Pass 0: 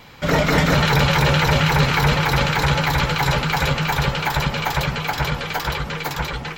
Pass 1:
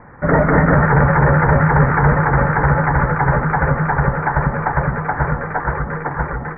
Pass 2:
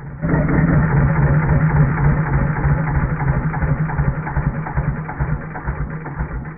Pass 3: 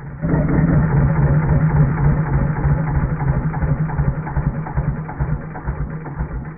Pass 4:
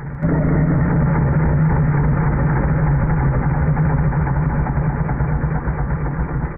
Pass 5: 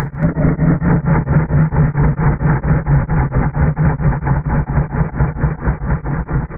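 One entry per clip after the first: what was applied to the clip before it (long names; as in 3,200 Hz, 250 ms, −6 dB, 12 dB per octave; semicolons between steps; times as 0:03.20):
Butterworth low-pass 1,900 Hz 72 dB per octave; level +4.5 dB
flat-topped bell 860 Hz −9 dB 2.3 octaves; hum removal 96.31 Hz, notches 35; backwards echo 903 ms −18 dB
dynamic equaliser 2,000 Hz, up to −6 dB, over −40 dBFS, Q 0.73
on a send: loudspeakers that aren't time-aligned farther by 51 metres −10 dB, 79 metres −3 dB; on the sum: boost into a limiter +11 dB; level −8 dB
upward compression, threshold −18 dBFS; on a send at −21 dB: convolution reverb RT60 0.50 s, pre-delay 3 ms; on the sum: tremolo along a rectified sine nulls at 4.4 Hz; level +5 dB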